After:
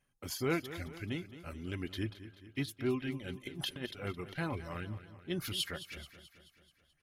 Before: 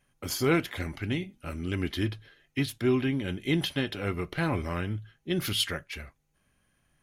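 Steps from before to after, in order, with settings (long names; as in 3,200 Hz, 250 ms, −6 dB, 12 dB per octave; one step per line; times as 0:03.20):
reverb reduction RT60 0.88 s
0:03.40–0:03.86: compressor whose output falls as the input rises −32 dBFS, ratio −0.5
on a send: repeating echo 216 ms, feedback 56%, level −14 dB
on the sum: level −7.5 dB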